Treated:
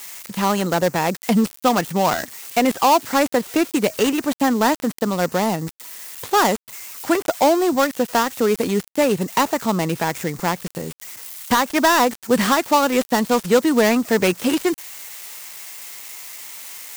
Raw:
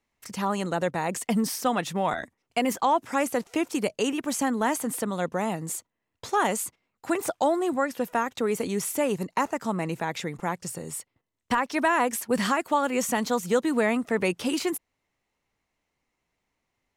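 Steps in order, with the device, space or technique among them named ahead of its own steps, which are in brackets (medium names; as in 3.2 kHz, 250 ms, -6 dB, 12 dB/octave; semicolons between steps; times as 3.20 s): budget class-D amplifier (dead-time distortion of 0.13 ms; zero-crossing glitches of -28.5 dBFS); trim +8 dB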